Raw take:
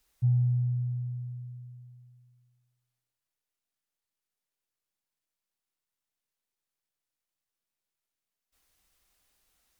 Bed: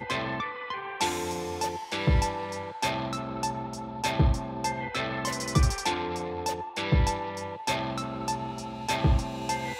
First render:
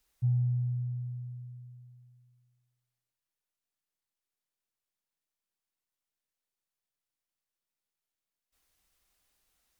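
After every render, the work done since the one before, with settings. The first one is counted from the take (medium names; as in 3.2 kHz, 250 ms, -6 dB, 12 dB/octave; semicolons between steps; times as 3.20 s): trim -3 dB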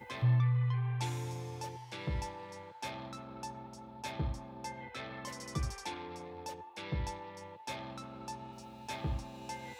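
add bed -13 dB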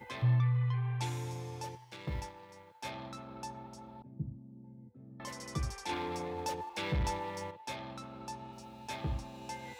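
1.75–2.85 s: companding laws mixed up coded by A; 4.02–5.20 s: Butterworth band-pass 170 Hz, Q 1.1; 5.89–7.51 s: waveshaping leveller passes 2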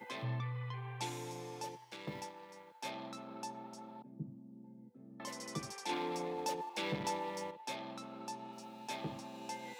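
high-pass 170 Hz 24 dB/octave; dynamic bell 1.5 kHz, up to -4 dB, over -53 dBFS, Q 1.5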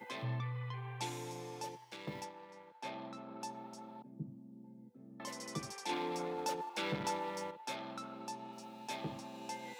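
2.24–3.40 s: low-pass 3.9 kHz -> 2.1 kHz 6 dB/octave; 6.18–8.14 s: peaking EQ 1.4 kHz +10 dB 0.22 oct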